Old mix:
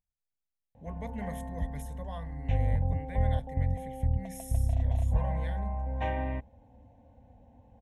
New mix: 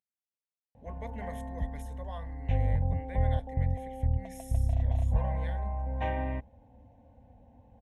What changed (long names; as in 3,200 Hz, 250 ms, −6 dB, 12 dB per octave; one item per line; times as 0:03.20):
speech: add high-pass filter 280 Hz
master: add high-shelf EQ 8,100 Hz −9 dB